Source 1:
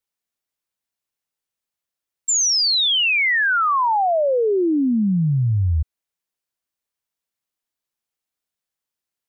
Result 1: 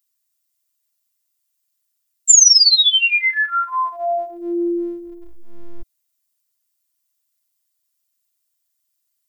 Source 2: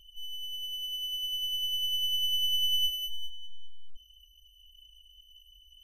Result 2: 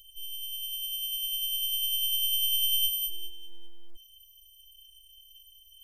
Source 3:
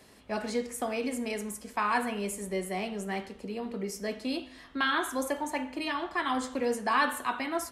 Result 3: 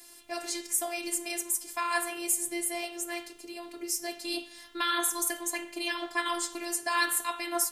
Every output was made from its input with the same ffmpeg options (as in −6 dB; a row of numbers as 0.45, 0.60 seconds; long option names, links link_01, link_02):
-af "crystalizer=i=1:c=0,afftfilt=real='hypot(re,im)*cos(PI*b)':imag='0':win_size=512:overlap=0.75,highshelf=frequency=2700:gain=11.5,volume=-1dB"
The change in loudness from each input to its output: +4.5, +2.0, +1.5 LU